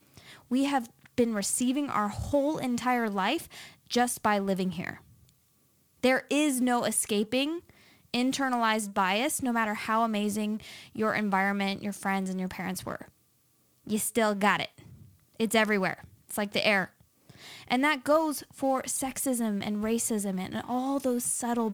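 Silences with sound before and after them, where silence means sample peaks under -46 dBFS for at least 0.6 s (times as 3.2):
5.29–6.04
13.09–13.87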